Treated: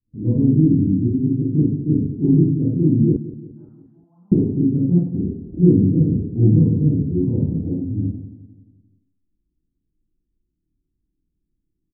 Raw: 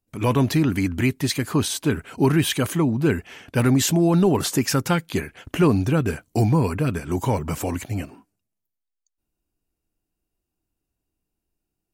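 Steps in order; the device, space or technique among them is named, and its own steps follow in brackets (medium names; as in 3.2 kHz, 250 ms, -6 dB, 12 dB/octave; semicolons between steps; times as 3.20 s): next room (low-pass 290 Hz 24 dB/octave; reverberation RT60 0.60 s, pre-delay 30 ms, DRR -8 dB); 3.16–4.32 s: elliptic band-pass 970–7600 Hz, stop band 40 dB; feedback delay 175 ms, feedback 52%, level -15.5 dB; trim -1 dB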